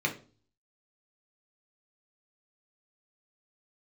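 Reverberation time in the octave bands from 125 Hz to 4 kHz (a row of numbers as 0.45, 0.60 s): 0.70, 0.50, 0.40, 0.35, 0.30, 0.35 s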